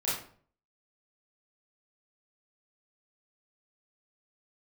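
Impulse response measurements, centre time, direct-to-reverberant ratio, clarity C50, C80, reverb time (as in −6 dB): 50 ms, −9.5 dB, 2.5 dB, 7.5 dB, 0.50 s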